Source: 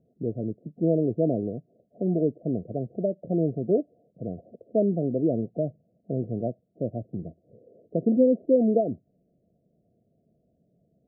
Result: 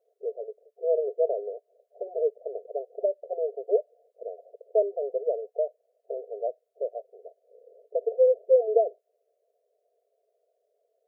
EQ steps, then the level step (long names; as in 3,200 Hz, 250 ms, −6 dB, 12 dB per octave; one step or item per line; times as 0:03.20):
linear-phase brick-wall high-pass 400 Hz
+2.0 dB